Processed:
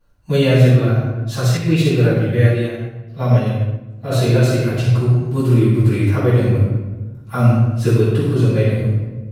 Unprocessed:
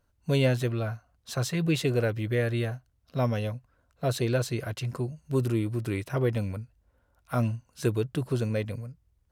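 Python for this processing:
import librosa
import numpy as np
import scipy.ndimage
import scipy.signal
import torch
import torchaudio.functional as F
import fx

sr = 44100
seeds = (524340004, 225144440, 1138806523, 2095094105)

y = fx.room_shoebox(x, sr, seeds[0], volume_m3=710.0, walls='mixed', distance_m=9.4)
y = fx.upward_expand(y, sr, threshold_db=-18.0, expansion=1.5, at=(1.57, 4.12))
y = F.gain(torch.from_numpy(y), -5.0).numpy()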